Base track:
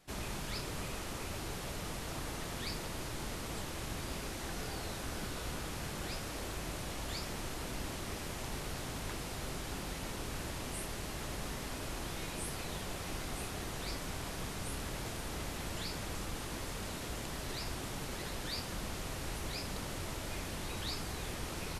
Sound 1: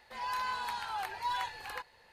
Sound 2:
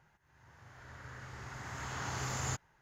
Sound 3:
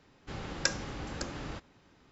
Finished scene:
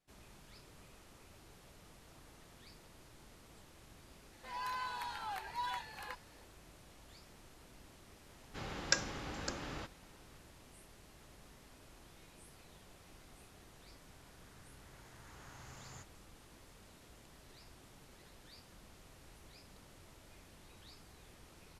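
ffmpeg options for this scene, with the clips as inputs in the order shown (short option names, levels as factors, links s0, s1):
-filter_complex "[0:a]volume=0.119[s0];[3:a]lowshelf=f=400:g=-5[s1];[1:a]atrim=end=2.12,asetpts=PTS-STARTPTS,volume=0.531,afade=t=in:d=0.004:c=hsin,afade=t=out:st=2.116:d=0.004:c=hsin,adelay=190953S[s2];[s1]atrim=end=2.11,asetpts=PTS-STARTPTS,volume=0.841,afade=t=in:d=0.004:c=hsin,afade=t=out:st=2.106:d=0.004:c=hsin,adelay=8270[s3];[2:a]atrim=end=2.81,asetpts=PTS-STARTPTS,volume=0.141,afade=t=in:d=0.004:c=hsin,afade=t=out:st=2.806:d=0.004:c=hsin,adelay=13470[s4];[s0][s2][s3][s4]amix=inputs=4:normalize=0"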